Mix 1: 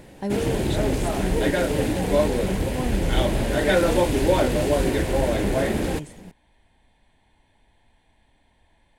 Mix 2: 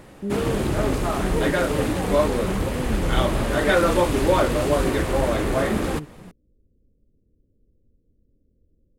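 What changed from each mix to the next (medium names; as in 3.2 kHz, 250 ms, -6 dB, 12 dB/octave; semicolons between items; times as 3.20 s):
speech: add steep low-pass 520 Hz 72 dB/octave; master: add peaking EQ 1.2 kHz +13 dB 0.36 oct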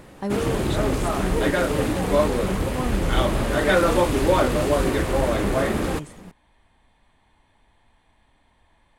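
speech: remove steep low-pass 520 Hz 72 dB/octave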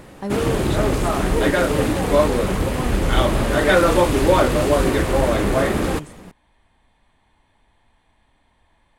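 background +3.5 dB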